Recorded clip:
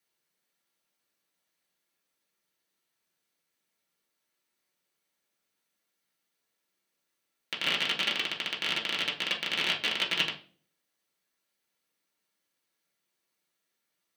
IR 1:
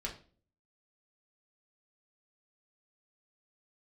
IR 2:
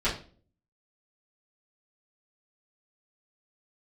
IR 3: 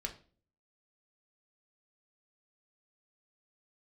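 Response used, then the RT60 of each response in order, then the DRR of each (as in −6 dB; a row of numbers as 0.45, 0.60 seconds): 1; 0.40, 0.40, 0.40 seconds; −2.5, −12.0, 2.0 decibels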